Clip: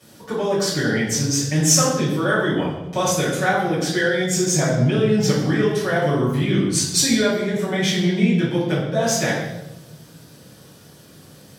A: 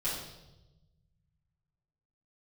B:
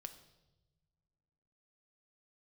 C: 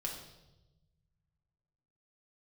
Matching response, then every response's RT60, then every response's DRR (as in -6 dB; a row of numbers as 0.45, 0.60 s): A; 1.0 s, not exponential, 1.0 s; -10.5, 8.0, -1.0 dB